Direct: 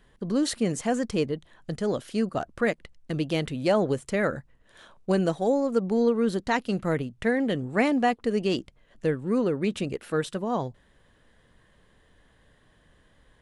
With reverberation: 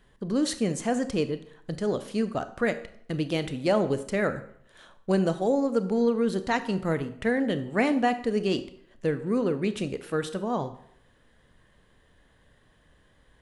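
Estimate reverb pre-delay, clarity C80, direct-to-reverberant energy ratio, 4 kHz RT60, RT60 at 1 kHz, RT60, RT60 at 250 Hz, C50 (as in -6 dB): 25 ms, 16.0 dB, 11.0 dB, 0.55 s, 0.65 s, 0.65 s, 0.65 s, 13.5 dB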